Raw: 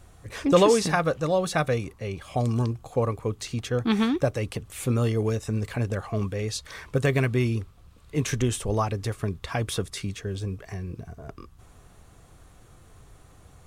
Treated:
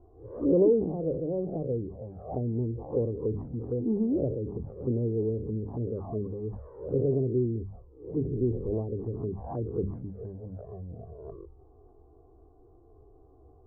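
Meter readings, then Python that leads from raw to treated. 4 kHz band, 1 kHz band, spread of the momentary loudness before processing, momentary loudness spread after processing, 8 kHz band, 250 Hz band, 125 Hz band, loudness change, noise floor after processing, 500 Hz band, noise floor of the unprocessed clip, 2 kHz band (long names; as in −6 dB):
below −40 dB, −16.5 dB, 12 LU, 16 LU, below −40 dB, −2.5 dB, −5.5 dB, −4.0 dB, −57 dBFS, −2.5 dB, −53 dBFS, below −40 dB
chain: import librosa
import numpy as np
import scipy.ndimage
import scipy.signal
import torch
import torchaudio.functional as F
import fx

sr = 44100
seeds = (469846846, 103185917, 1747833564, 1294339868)

y = fx.spec_swells(x, sr, rise_s=0.43)
y = scipy.signal.sosfilt(scipy.signal.butter(6, 990.0, 'lowpass', fs=sr, output='sos'), y)
y = fx.hum_notches(y, sr, base_hz=50, count=4)
y = fx.env_flanger(y, sr, rest_ms=3.0, full_db=-20.5)
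y = fx.peak_eq(y, sr, hz=70.0, db=4.0, octaves=0.57)
y = fx.env_lowpass_down(y, sr, base_hz=350.0, full_db=-23.5)
y = fx.peak_eq(y, sr, hz=400.0, db=12.0, octaves=1.1)
y = fx.sustainer(y, sr, db_per_s=76.0)
y = y * 10.0 ** (-7.5 / 20.0)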